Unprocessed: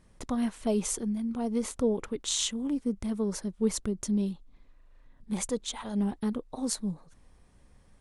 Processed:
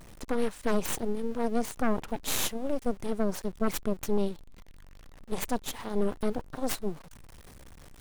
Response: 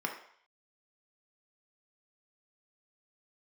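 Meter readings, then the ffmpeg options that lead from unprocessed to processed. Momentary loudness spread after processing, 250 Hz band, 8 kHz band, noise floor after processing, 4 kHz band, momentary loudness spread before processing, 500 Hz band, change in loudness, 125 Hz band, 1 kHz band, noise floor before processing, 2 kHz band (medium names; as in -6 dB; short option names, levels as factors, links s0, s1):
5 LU, -3.0 dB, -3.5 dB, -53 dBFS, -2.5 dB, 6 LU, +2.0 dB, -1.0 dB, -2.5 dB, +6.5 dB, -60 dBFS, +7.5 dB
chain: -af "aeval=exprs='val(0)+0.5*0.0126*sgn(val(0))':c=same,aeval=exprs='0.266*(cos(1*acos(clip(val(0)/0.266,-1,1)))-cos(1*PI/2))+0.119*(cos(8*acos(clip(val(0)/0.266,-1,1)))-cos(8*PI/2))':c=same,volume=0.447"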